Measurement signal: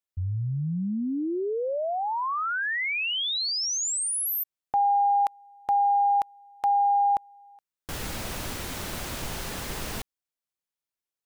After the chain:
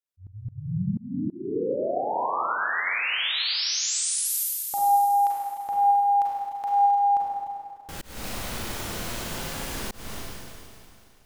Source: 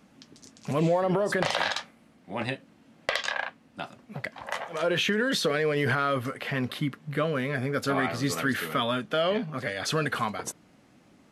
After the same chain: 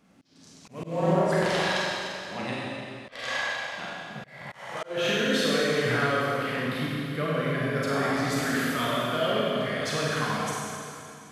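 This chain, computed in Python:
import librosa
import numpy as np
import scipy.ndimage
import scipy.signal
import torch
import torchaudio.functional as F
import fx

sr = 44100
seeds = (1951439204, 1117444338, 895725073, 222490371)

y = fx.rev_schroeder(x, sr, rt60_s=2.6, comb_ms=33, drr_db=-6.0)
y = fx.auto_swell(y, sr, attack_ms=265.0)
y = y * 10.0 ** (-5.5 / 20.0)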